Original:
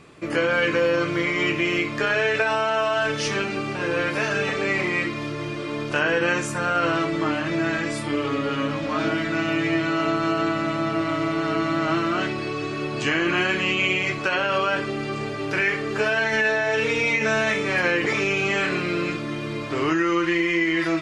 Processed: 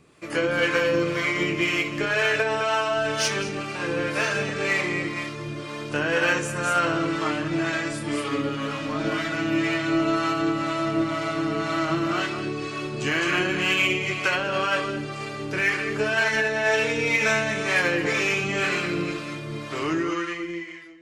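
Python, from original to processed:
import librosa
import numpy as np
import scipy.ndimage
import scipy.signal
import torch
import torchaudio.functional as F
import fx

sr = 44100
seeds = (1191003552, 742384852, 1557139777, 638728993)

p1 = fx.fade_out_tail(x, sr, length_s=1.33)
p2 = p1 + fx.echo_single(p1, sr, ms=211, db=-7.0, dry=0)
p3 = fx.harmonic_tremolo(p2, sr, hz=2.0, depth_pct=50, crossover_hz=550.0)
p4 = 10.0 ** (-25.5 / 20.0) * np.tanh(p3 / 10.0 ** (-25.5 / 20.0))
p5 = p3 + (p4 * librosa.db_to_amplitude(-9.0))
p6 = fx.high_shelf(p5, sr, hz=7500.0, db=11.0)
y = fx.upward_expand(p6, sr, threshold_db=-36.0, expansion=1.5)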